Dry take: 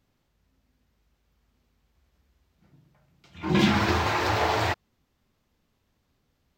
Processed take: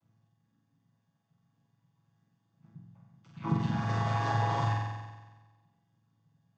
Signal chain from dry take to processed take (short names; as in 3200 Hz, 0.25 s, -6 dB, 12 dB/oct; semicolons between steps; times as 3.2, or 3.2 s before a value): chord vocoder major triad, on A2; fifteen-band EQ 160 Hz +6 dB, 400 Hz -7 dB, 1000 Hz +7 dB, 6300 Hz +7 dB; compressor 6:1, threshold -25 dBFS, peak gain reduction 14 dB; reverb removal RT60 0.81 s; on a send: flutter echo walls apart 7.9 m, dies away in 1.3 s; on the sum: gain -1.5 dB